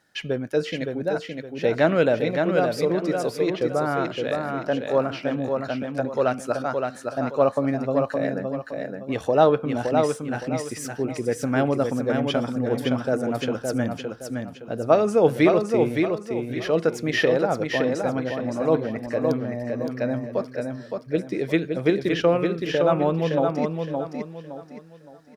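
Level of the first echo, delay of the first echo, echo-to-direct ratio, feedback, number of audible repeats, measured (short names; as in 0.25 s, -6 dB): -4.5 dB, 0.566 s, -4.0 dB, 33%, 4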